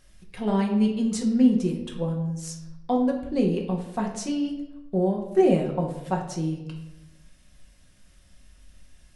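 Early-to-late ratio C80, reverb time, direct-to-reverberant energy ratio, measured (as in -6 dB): 9.5 dB, 0.95 s, -0.5 dB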